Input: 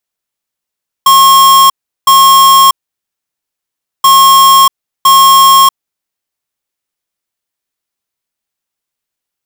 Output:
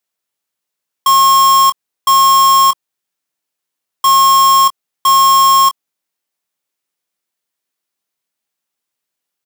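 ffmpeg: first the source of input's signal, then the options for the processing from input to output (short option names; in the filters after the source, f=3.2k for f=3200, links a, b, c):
-f lavfi -i "aevalsrc='0.631*(2*lt(mod(1080*t,1),0.5)-1)*clip(min(mod(mod(t,2.98),1.01),0.64-mod(mod(t,2.98),1.01))/0.005,0,1)*lt(mod(t,2.98),2.02)':d=5.96:s=44100"
-filter_complex "[0:a]highpass=140,alimiter=limit=-7dB:level=0:latency=1,asplit=2[a][b];[b]adelay=23,volume=-10dB[c];[a][c]amix=inputs=2:normalize=0"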